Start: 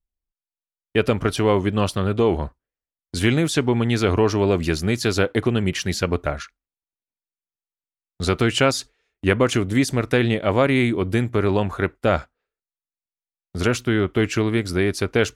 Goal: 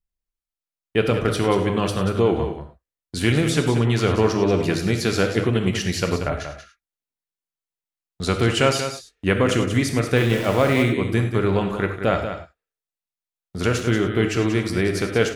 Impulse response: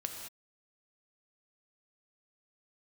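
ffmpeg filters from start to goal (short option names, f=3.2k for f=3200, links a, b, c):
-filter_complex "[0:a]aecho=1:1:185:0.355,asettb=1/sr,asplit=3[a][b][c];[a]atrim=end=10.164[d];[b]atrim=start=10.16:end=10.83,asetpts=PTS-STARTPTS,afade=t=in:d=0.004:c=qsin,afade=t=out:st=0.666:d=0.004:c=qsin,aeval=exprs='val(0)*gte(abs(val(0)),0.0447)':c=same[e];[c]atrim=start=10.826[f];[d][e]acrossfade=d=0.004:c1=hsin:c2=qsin[g];[g][f]acrossfade=d=0.004:c1=qsin:c2=hsin[h];[1:a]atrim=start_sample=2205,afade=t=out:st=0.16:d=0.01,atrim=end_sample=7497[i];[h][i]afir=irnorm=-1:irlink=0"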